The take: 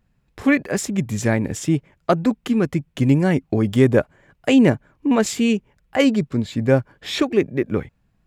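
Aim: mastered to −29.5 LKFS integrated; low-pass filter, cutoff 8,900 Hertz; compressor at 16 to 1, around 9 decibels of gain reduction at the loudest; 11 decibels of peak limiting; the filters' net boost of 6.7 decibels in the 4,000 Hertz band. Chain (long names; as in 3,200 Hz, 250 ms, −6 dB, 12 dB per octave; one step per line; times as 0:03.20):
low-pass filter 8,900 Hz
parametric band 4,000 Hz +9 dB
downward compressor 16 to 1, threshold −18 dBFS
level −1.5 dB
brickwall limiter −18.5 dBFS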